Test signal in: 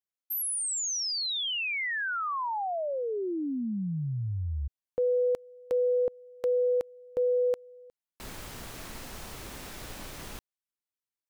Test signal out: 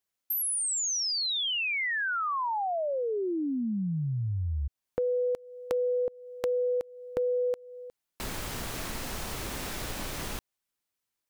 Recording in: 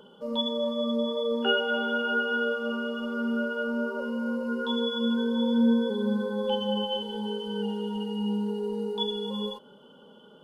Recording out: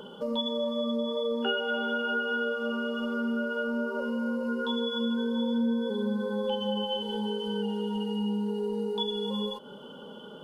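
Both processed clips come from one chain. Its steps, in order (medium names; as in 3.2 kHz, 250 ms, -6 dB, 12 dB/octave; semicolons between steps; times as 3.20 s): compression 2.5:1, threshold -40 dBFS; trim +8 dB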